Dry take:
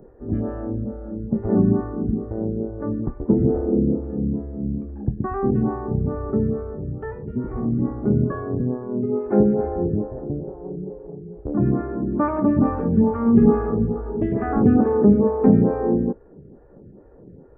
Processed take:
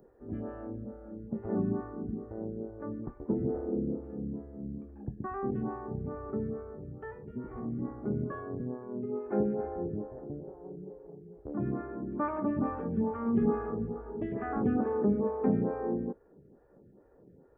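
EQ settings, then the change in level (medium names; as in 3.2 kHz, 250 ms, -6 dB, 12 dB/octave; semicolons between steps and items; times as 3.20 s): tilt EQ +2 dB/octave; -9.0 dB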